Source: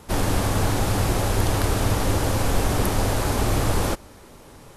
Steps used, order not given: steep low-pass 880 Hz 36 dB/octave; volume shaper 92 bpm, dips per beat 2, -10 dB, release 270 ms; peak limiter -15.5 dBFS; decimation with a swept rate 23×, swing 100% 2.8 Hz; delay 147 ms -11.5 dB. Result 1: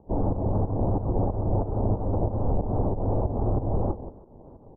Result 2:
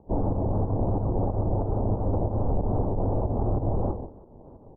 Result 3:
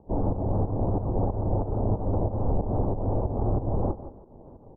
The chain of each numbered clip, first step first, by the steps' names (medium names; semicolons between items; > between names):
delay > decimation with a swept rate > peak limiter > volume shaper > steep low-pass; volume shaper > delay > peak limiter > decimation with a swept rate > steep low-pass; peak limiter > decimation with a swept rate > delay > volume shaper > steep low-pass